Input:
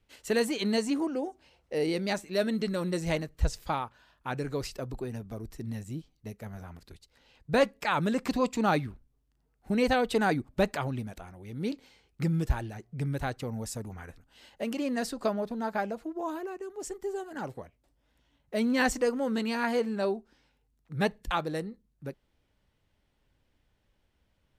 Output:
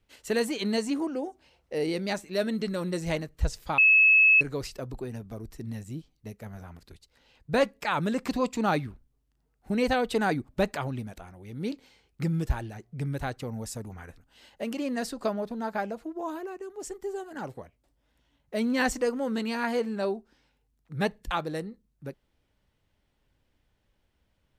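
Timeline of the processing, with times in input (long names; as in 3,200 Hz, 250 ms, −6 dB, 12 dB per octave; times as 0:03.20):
0:03.78–0:04.41: beep over 2,590 Hz −15 dBFS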